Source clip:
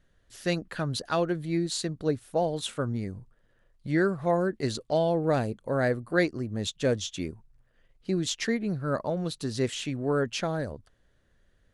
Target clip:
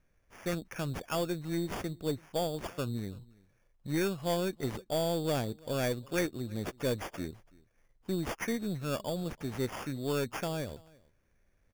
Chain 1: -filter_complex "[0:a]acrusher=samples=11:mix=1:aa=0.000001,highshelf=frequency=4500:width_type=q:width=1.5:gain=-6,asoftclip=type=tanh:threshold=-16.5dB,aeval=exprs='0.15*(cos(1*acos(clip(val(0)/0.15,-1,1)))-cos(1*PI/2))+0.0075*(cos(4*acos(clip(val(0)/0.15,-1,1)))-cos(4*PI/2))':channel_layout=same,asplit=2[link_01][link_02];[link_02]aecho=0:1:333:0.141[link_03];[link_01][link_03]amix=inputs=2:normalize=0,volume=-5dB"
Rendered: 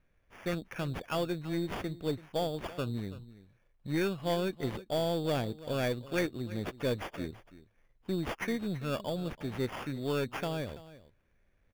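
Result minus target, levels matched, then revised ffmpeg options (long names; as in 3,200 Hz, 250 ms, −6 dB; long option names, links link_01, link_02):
8,000 Hz band −6.5 dB; echo-to-direct +7.5 dB
-filter_complex "[0:a]acrusher=samples=11:mix=1:aa=0.000001,asoftclip=type=tanh:threshold=-16.5dB,aeval=exprs='0.15*(cos(1*acos(clip(val(0)/0.15,-1,1)))-cos(1*PI/2))+0.0075*(cos(4*acos(clip(val(0)/0.15,-1,1)))-cos(4*PI/2))':channel_layout=same,asplit=2[link_01][link_02];[link_02]aecho=0:1:333:0.0596[link_03];[link_01][link_03]amix=inputs=2:normalize=0,volume=-5dB"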